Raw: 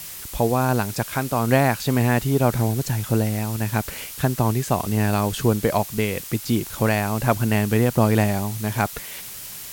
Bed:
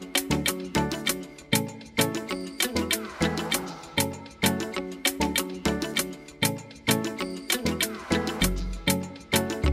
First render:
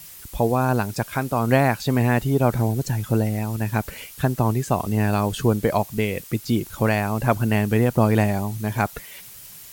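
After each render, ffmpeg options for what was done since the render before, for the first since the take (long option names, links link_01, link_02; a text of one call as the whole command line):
ffmpeg -i in.wav -af "afftdn=noise_reduction=8:noise_floor=-36" out.wav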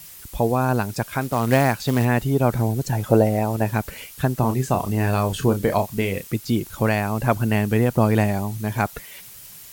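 ffmpeg -i in.wav -filter_complex "[0:a]asettb=1/sr,asplit=3[link_01][link_02][link_03];[link_01]atrim=end=1.214[link_04];[link_02]atrim=start=1.21:end=2.05,asetpts=PTS-STARTPTS,afade=type=in:duration=0.004:curve=qsin,afade=type=out:start_time=0.836:duration=0.004:curve=qsin,acrusher=bits=4:mode=log:mix=0:aa=0.000001[link_05];[link_03]atrim=start=2.046[link_06];[link_04][link_05]acrossfade=duration=0.004:curve1=hsin:curve2=qsin[link_07];[link_07][link_06]acrossfade=duration=0.004:curve1=qsin:curve2=hsin,asettb=1/sr,asplit=3[link_08][link_09][link_10];[link_08]atrim=end=2.924[link_11];[link_09]atrim=start=2.92:end=3.72,asetpts=PTS-STARTPTS,afade=type=in:duration=0.004:curve=qsin,afade=type=out:start_time=0.796:duration=0.004:curve=qsin,equalizer=frequency=610:width=0.88:gain=12[link_12];[link_10]atrim=start=3.716[link_13];[link_11][link_12]acrossfade=duration=0.004:curve1=hsin:curve2=qsin[link_14];[link_14][link_13]acrossfade=duration=0.004:curve1=qsin:curve2=hsin,asettb=1/sr,asplit=3[link_15][link_16][link_17];[link_15]atrim=end=4.394[link_18];[link_16]atrim=start=4.39:end=6.32,asetpts=PTS-STARTPTS,afade=type=in:duration=0.004:curve=qsin,afade=type=out:start_time=1.926:duration=0.004:curve=qsin,asplit=2[link_19][link_20];[link_20]adelay=31,volume=-8dB[link_21];[link_19][link_21]amix=inputs=2:normalize=0,atrim=end_sample=85113[link_22];[link_17]atrim=start=6.316[link_23];[link_18][link_22]acrossfade=duration=0.004:curve1=hsin:curve2=qsin[link_24];[link_24][link_23]acrossfade=duration=0.004:curve1=qsin:curve2=hsin" out.wav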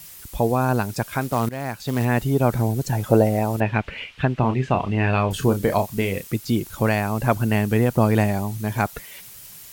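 ffmpeg -i in.wav -filter_complex "[0:a]asettb=1/sr,asplit=3[link_01][link_02][link_03];[link_01]atrim=end=3.604[link_04];[link_02]atrim=start=3.6:end=5.31,asetpts=PTS-STARTPTS,afade=type=in:duration=0.004:curve=qsin,afade=type=out:start_time=1.706:duration=0.004:curve=qsin,lowpass=frequency=2700:width_type=q:width=2.3[link_05];[link_03]atrim=start=5.306[link_06];[link_04][link_05]acrossfade=duration=0.004:curve1=hsin:curve2=qsin[link_07];[link_07][link_06]acrossfade=duration=0.004:curve1=qsin:curve2=hsin,asplit=2[link_08][link_09];[link_08]atrim=end=1.49,asetpts=PTS-STARTPTS,afade=type=out:start_time=1.486:duration=0.004:curve=hsin:silence=0.105925[link_10];[link_09]atrim=start=1.49,asetpts=PTS-STARTPTS,afade=type=in:duration=0.7:silence=0.105925[link_11];[link_10][link_11]concat=n=2:v=0:a=1" out.wav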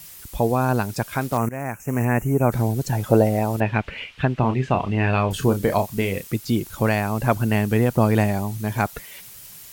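ffmpeg -i in.wav -filter_complex "[0:a]asettb=1/sr,asplit=3[link_01][link_02][link_03];[link_01]atrim=end=1.374[link_04];[link_02]atrim=start=1.37:end=2.52,asetpts=PTS-STARTPTS,afade=type=in:duration=0.004:curve=qsin,afade=type=out:start_time=1.146:duration=0.004:curve=qsin,asuperstop=centerf=4000:order=8:qfactor=1.2[link_05];[link_03]atrim=start=2.516[link_06];[link_04][link_05]acrossfade=duration=0.004:curve1=hsin:curve2=qsin[link_07];[link_07][link_06]acrossfade=duration=0.004:curve1=qsin:curve2=hsin" out.wav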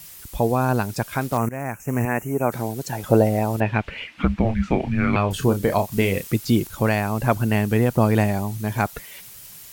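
ffmpeg -i in.wav -filter_complex "[0:a]asettb=1/sr,asplit=3[link_01][link_02][link_03];[link_01]atrim=end=2.054[link_04];[link_02]atrim=start=2.05:end=3.04,asetpts=PTS-STARTPTS,afade=type=in:duration=0.004:curve=qsin,afade=type=out:start_time=0.986:duration=0.004:curve=qsin,highpass=frequency=310:poles=1[link_05];[link_03]atrim=start=3.036[link_06];[link_04][link_05]acrossfade=duration=0.004:curve1=hsin:curve2=qsin[link_07];[link_07][link_06]acrossfade=duration=0.004:curve1=qsin:curve2=hsin,asettb=1/sr,asplit=3[link_08][link_09][link_10];[link_08]atrim=end=4.074[link_11];[link_09]atrim=start=4.07:end=5.16,asetpts=PTS-STARTPTS,afade=type=in:duration=0.004:curve=qsin,afade=type=out:start_time=1.086:duration=0.004:curve=qsin,afreqshift=-330[link_12];[link_10]atrim=start=5.156[link_13];[link_11][link_12]acrossfade=duration=0.004:curve1=hsin:curve2=qsin[link_14];[link_14][link_13]acrossfade=duration=0.004:curve1=qsin:curve2=hsin,asplit=3[link_15][link_16][link_17];[link_15]atrim=end=5.922[link_18];[link_16]atrim=start=5.918:end=6.672,asetpts=PTS-STARTPTS,volume=3dB[link_19];[link_17]atrim=start=6.668[link_20];[link_18][link_19]acrossfade=duration=0.004:curve1=hsin:curve2=hsin[link_21];[link_21][link_20]acrossfade=duration=0.004:curve1=hsin:curve2=hsin" out.wav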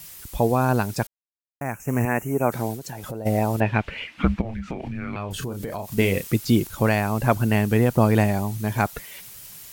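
ffmpeg -i in.wav -filter_complex "[0:a]asplit=3[link_01][link_02][link_03];[link_01]afade=type=out:start_time=2.75:duration=0.02[link_04];[link_02]acompressor=threshold=-31dB:ratio=5:attack=3.2:release=140:knee=1:detection=peak,afade=type=in:start_time=2.75:duration=0.02,afade=type=out:start_time=3.25:duration=0.02[link_05];[link_03]afade=type=in:start_time=3.25:duration=0.02[link_06];[link_04][link_05][link_06]amix=inputs=3:normalize=0,asplit=3[link_07][link_08][link_09];[link_07]afade=type=out:start_time=4.4:duration=0.02[link_10];[link_08]acompressor=threshold=-27dB:ratio=6:attack=3.2:release=140:knee=1:detection=peak,afade=type=in:start_time=4.4:duration=0.02,afade=type=out:start_time=5.97:duration=0.02[link_11];[link_09]afade=type=in:start_time=5.97:duration=0.02[link_12];[link_10][link_11][link_12]amix=inputs=3:normalize=0,asplit=3[link_13][link_14][link_15];[link_13]atrim=end=1.07,asetpts=PTS-STARTPTS,afade=type=out:start_time=1.066:duration=0.004:curve=hsin[link_16];[link_14]atrim=start=1.07:end=1.61,asetpts=PTS-STARTPTS,volume=0[link_17];[link_15]atrim=start=1.61,asetpts=PTS-STARTPTS,afade=type=in:duration=0.004:curve=hsin[link_18];[link_16][link_17][link_18]concat=n=3:v=0:a=1" out.wav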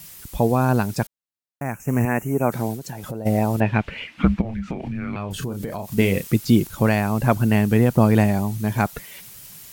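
ffmpeg -i in.wav -af "equalizer=frequency=180:width=1.1:gain=4.5" out.wav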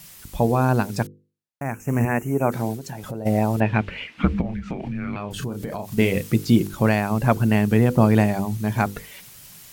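ffmpeg -i in.wav -af "highshelf=frequency=9100:gain=-5,bandreject=frequency=50:width_type=h:width=6,bandreject=frequency=100:width_type=h:width=6,bandreject=frequency=150:width_type=h:width=6,bandreject=frequency=200:width_type=h:width=6,bandreject=frequency=250:width_type=h:width=6,bandreject=frequency=300:width_type=h:width=6,bandreject=frequency=350:width_type=h:width=6,bandreject=frequency=400:width_type=h:width=6,bandreject=frequency=450:width_type=h:width=6,bandreject=frequency=500:width_type=h:width=6" out.wav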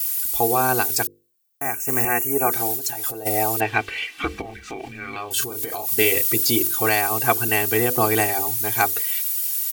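ffmpeg -i in.wav -af "aemphasis=mode=production:type=riaa,aecho=1:1:2.6:0.92" out.wav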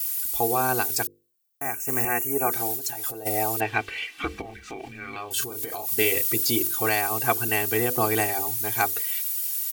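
ffmpeg -i in.wav -af "volume=-4dB" out.wav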